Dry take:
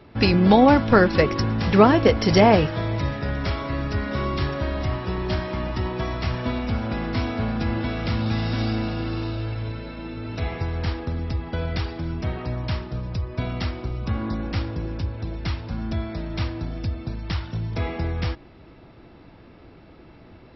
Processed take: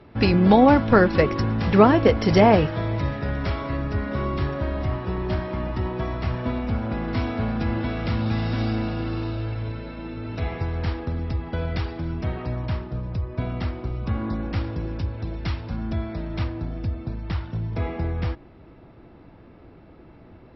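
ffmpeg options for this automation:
-af "asetnsamples=n=441:p=0,asendcmd='3.77 lowpass f 1700;7.08 lowpass f 3100;12.66 lowpass f 1600;13.84 lowpass f 2500;14.64 lowpass f 4600;15.76 lowpass f 2500;16.44 lowpass f 1600',lowpass=f=2900:p=1"

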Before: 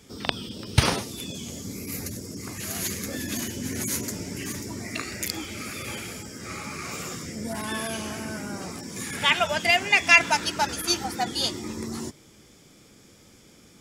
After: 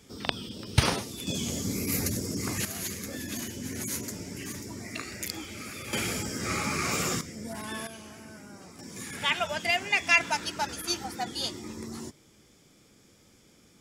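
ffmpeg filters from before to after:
-af "asetnsamples=n=441:p=0,asendcmd='1.27 volume volume 4.5dB;2.65 volume volume -5dB;5.93 volume volume 5.5dB;7.21 volume volume -6dB;7.87 volume volume -13dB;8.79 volume volume -6dB',volume=0.708"

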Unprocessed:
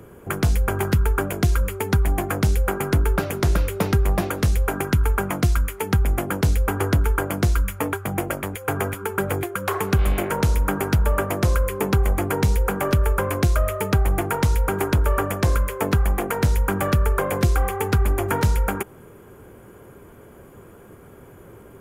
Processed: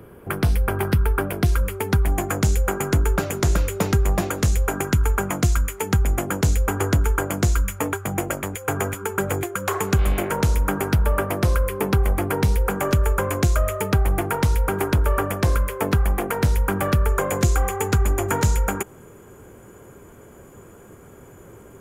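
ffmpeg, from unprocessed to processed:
-af "asetnsamples=n=441:p=0,asendcmd='1.46 equalizer g -1.5;2.12 equalizer g 9.5;10 equalizer g 3;10.92 equalizer g -3.5;12.7 equalizer g 6.5;13.82 equalizer g -1;17.09 equalizer g 11',equalizer=f=7000:t=o:w=0.38:g=-11.5"

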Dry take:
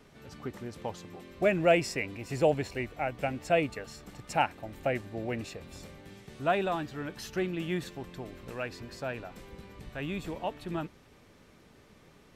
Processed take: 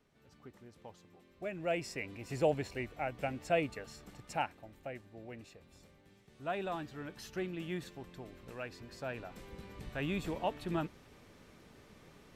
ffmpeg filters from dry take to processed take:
-af "volume=2.66,afade=t=in:st=1.51:d=0.78:silence=0.316228,afade=t=out:st=4.04:d=0.79:silence=0.354813,afade=t=in:st=6.31:d=0.43:silence=0.446684,afade=t=in:st=8.83:d=1:silence=0.473151"

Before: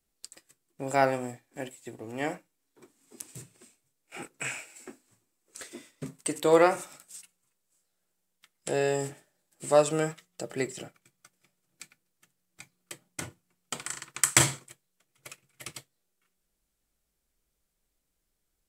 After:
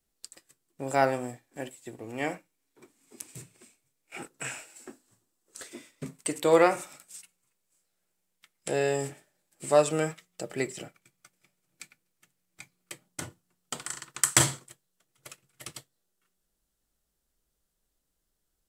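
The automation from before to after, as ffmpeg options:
-af "asetnsamples=n=441:p=0,asendcmd='1.95 equalizer g 4;4.18 equalizer g -7.5;5.66 equalizer g 3;13.06 equalizer g -6',equalizer=f=2300:t=o:w=0.31:g=-2"

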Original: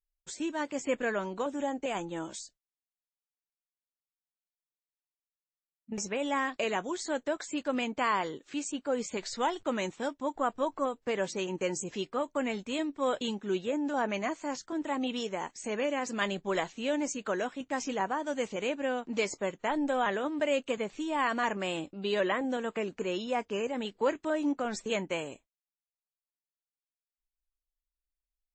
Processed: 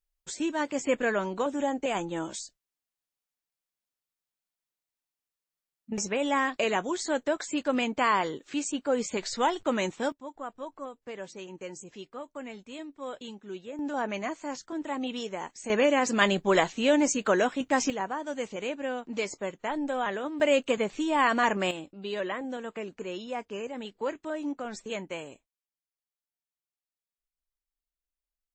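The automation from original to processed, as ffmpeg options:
-af "asetnsamples=n=441:p=0,asendcmd='10.12 volume volume -8.5dB;13.79 volume volume -0.5dB;15.7 volume volume 8dB;17.9 volume volume -1dB;20.4 volume volume 5.5dB;21.71 volume volume -3.5dB',volume=1.58"

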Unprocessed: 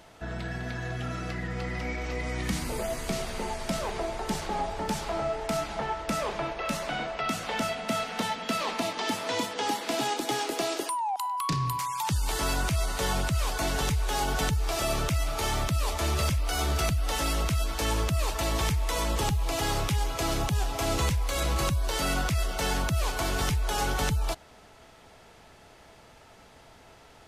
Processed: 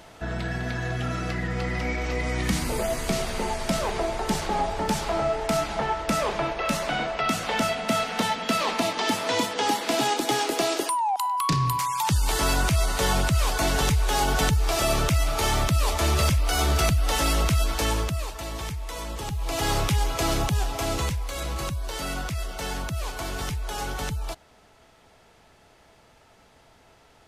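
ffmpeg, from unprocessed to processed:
-af "volume=5.31,afade=t=out:st=17.71:d=0.6:silence=0.298538,afade=t=in:st=19.26:d=0.46:silence=0.334965,afade=t=out:st=20.31:d=1.02:silence=0.446684"

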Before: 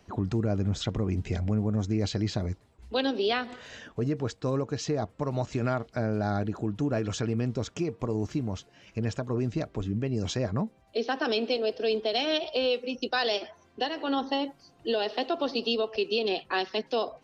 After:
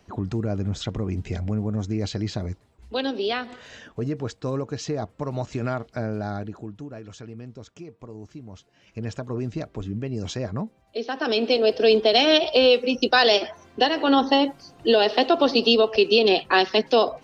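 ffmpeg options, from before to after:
-af "volume=11.9,afade=t=out:st=5.98:d=0.92:silence=0.266073,afade=t=in:st=8.45:d=0.74:silence=0.298538,afade=t=in:st=11.12:d=0.66:silence=0.316228"

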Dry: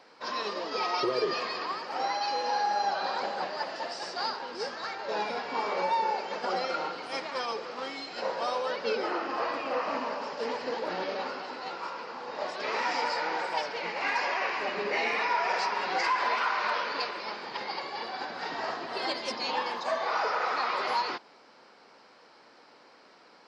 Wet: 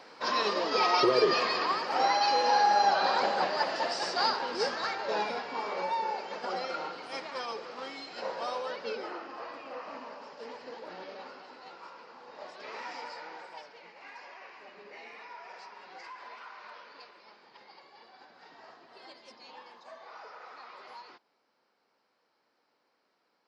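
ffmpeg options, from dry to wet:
-af "volume=1.68,afade=t=out:st=4.68:d=0.86:silence=0.375837,afade=t=out:st=8.56:d=0.77:silence=0.446684,afade=t=out:st=12.84:d=1.1:silence=0.398107"

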